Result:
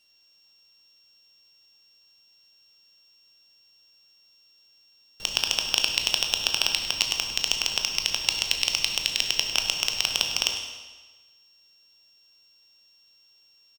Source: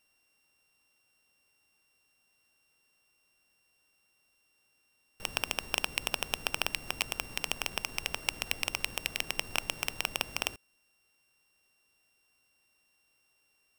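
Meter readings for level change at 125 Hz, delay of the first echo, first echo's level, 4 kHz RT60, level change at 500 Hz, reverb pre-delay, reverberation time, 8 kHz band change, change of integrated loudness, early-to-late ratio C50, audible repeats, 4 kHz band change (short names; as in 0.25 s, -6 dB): +1.5 dB, 0.102 s, -13.5 dB, 1.2 s, +1.5 dB, 16 ms, 1.3 s, +10.0 dB, +9.5 dB, 5.0 dB, 1, +12.5 dB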